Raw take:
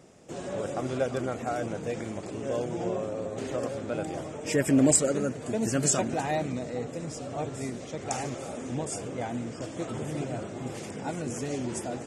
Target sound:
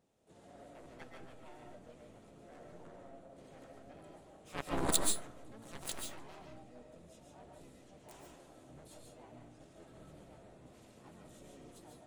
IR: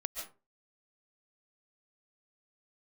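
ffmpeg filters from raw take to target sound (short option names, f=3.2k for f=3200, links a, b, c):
-filter_complex "[0:a]aeval=exprs='0.447*(cos(1*acos(clip(val(0)/0.447,-1,1)))-cos(1*PI/2))+0.158*(cos(3*acos(clip(val(0)/0.447,-1,1)))-cos(3*PI/2))':c=same,asplit=3[a][b][c];[b]asetrate=22050,aresample=44100,atempo=2,volume=-2dB[d];[c]asetrate=55563,aresample=44100,atempo=0.793701,volume=-1dB[e];[a][d][e]amix=inputs=3:normalize=0[f];[1:a]atrim=start_sample=2205[g];[f][g]afir=irnorm=-1:irlink=0"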